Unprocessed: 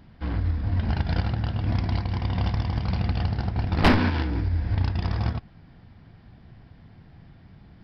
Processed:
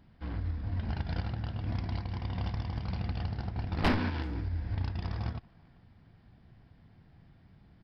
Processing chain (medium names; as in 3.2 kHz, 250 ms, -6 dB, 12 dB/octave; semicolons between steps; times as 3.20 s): speakerphone echo 390 ms, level -25 dB; trim -9 dB